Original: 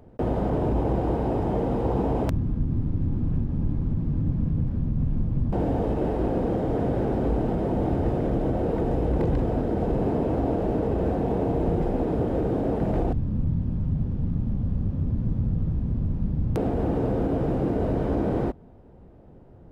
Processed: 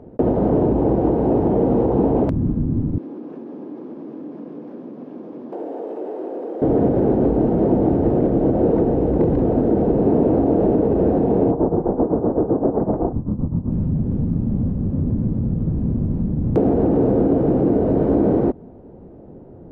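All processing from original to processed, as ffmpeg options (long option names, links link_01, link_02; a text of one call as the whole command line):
ffmpeg -i in.wav -filter_complex "[0:a]asettb=1/sr,asplit=3[link_01][link_02][link_03];[link_01]atrim=end=2.984[link_04];[link_02]atrim=start=2.98:end=6.62,asetpts=PTS-STARTPTS,afade=type=in:duration=0.004:curve=qsin,afade=type=out:start_time=3.636:duration=0.004:curve=qsin,highpass=frequency=340:width=0.5412,highpass=frequency=340:width=1.3066,aemphasis=mode=production:type=cd,acompressor=threshold=-41dB:ratio=2.5:attack=3.2:release=140:knee=1:detection=peak[link_05];[link_03]atrim=start=6.616[link_06];[link_04][link_05]acrossfade=duration=0.004:curve1=hsin:curve2=qsin[link_07];[link_07][link_06]acrossfade=duration=0.004:curve1=qsin:curve2=hsin,asettb=1/sr,asplit=3[link_08][link_09][link_10];[link_08]atrim=end=11.514[link_11];[link_09]atrim=start=11.51:end=13.71,asetpts=PTS-STARTPTS,afade=type=in:duration=0.004:curve=qsin,afade=type=out:start_time=2.196:duration=0.004:curve=qsin,lowpass=frequency=1100:width_type=q:width=2.2,tremolo=f=7.8:d=0.8[link_12];[link_10]atrim=start=13.706[link_13];[link_11][link_12]acrossfade=duration=0.004:curve1=hsin:curve2=qsin[link_14];[link_14][link_13]acrossfade=duration=0.004:curve1=qsin:curve2=hsin,lowpass=frequency=2600:poles=1,alimiter=limit=-18.5dB:level=0:latency=1:release=94,equalizer=frequency=330:width_type=o:width=2.9:gain=12.5" out.wav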